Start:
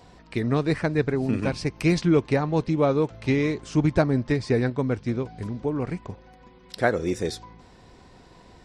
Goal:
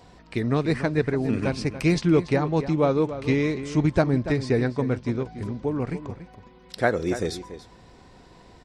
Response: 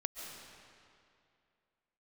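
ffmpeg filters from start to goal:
-filter_complex "[0:a]asplit=2[s0][s1];[s1]adelay=285.7,volume=0.251,highshelf=f=4000:g=-6.43[s2];[s0][s2]amix=inputs=2:normalize=0"

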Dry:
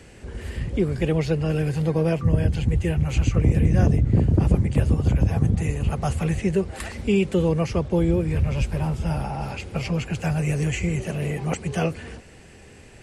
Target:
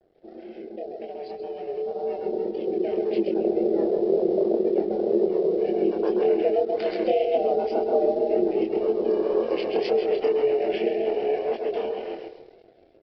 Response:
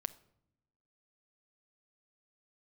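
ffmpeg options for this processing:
-filter_complex "[0:a]asplit=2[s0][s1];[s1]aecho=0:1:132|264|396|528|660|792:0.501|0.256|0.13|0.0665|0.0339|0.0173[s2];[s0][s2]amix=inputs=2:normalize=0,aeval=exprs='val(0)*sin(2*PI*280*n/s)':c=same,acompressor=threshold=0.0355:ratio=6,highpass=f=330:w=0.5412,highpass=f=330:w=1.3066,afftfilt=real='re*gte(hypot(re,im),0.00562)':imag='im*gte(hypot(re,im),0.00562)':win_size=1024:overlap=0.75,flanger=delay=22.5:depth=5.6:speed=1.9,aresample=11025,aeval=exprs='sgn(val(0))*max(abs(val(0))-0.00126,0)':c=same,aresample=44100,firequalizer=gain_entry='entry(650,0);entry(990,-16);entry(4100,-3)':delay=0.05:min_phase=1,dynaudnorm=f=390:g=13:m=4.73,adynamicequalizer=threshold=0.00708:dfrequency=2200:dqfactor=0.7:tfrequency=2200:tqfactor=0.7:attack=5:release=100:ratio=0.375:range=1.5:mode=cutabove:tftype=highshelf,volume=1.68"

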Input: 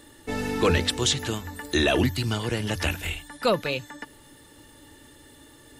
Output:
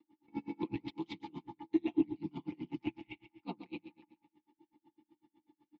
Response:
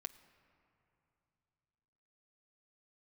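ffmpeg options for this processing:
-filter_complex "[0:a]agate=range=0.398:threshold=0.0112:ratio=16:detection=peak,aeval=exprs='val(0)*sin(2*PI*36*n/s)':c=same,aecho=1:1:5.8:0.82,acrossover=split=480|3000[s0][s1][s2];[s1]acompressor=threshold=0.00891:ratio=2[s3];[s0][s3][s2]amix=inputs=3:normalize=0,equalizer=f=100:t=o:w=0.33:g=10,equalizer=f=250:t=o:w=0.33:g=7,equalizer=f=400:t=o:w=0.33:g=-4,equalizer=f=2500:t=o:w=0.33:g=-4,equalizer=f=5000:t=o:w=0.33:g=5,aeval=exprs='(tanh(7.94*val(0)+0.55)-tanh(0.55))/7.94':c=same,asplit=3[s4][s5][s6];[s4]bandpass=f=300:t=q:w=8,volume=1[s7];[s5]bandpass=f=870:t=q:w=8,volume=0.501[s8];[s6]bandpass=f=2240:t=q:w=8,volume=0.355[s9];[s7][s8][s9]amix=inputs=3:normalize=0,acrossover=split=540|5000[s10][s11][s12];[s12]acrusher=bits=4:mix=0:aa=0.000001[s13];[s10][s11][s13]amix=inputs=3:normalize=0,aecho=1:1:139|278|417|556:0.224|0.094|0.0395|0.0166,aeval=exprs='val(0)*pow(10,-34*(0.5-0.5*cos(2*PI*8*n/s))/20)':c=same,volume=2.66"

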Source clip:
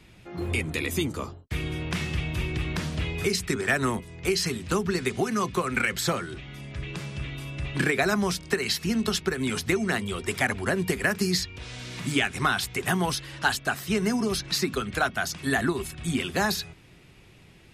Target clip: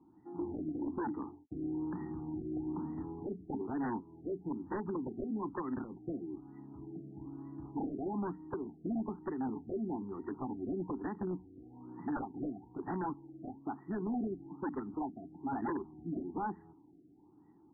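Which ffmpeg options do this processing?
-filter_complex "[0:a]asplit=3[s0][s1][s2];[s0]bandpass=f=300:t=q:w=8,volume=1[s3];[s1]bandpass=f=870:t=q:w=8,volume=0.501[s4];[s2]bandpass=f=2240:t=q:w=8,volume=0.355[s5];[s3][s4][s5]amix=inputs=3:normalize=0,aeval=exprs='0.0178*(abs(mod(val(0)/0.0178+3,4)-2)-1)':c=same,afftfilt=real='re*lt(b*sr/1024,720*pow(2000/720,0.5+0.5*sin(2*PI*1.1*pts/sr)))':imag='im*lt(b*sr/1024,720*pow(2000/720,0.5+0.5*sin(2*PI*1.1*pts/sr)))':win_size=1024:overlap=0.75,volume=1.78"

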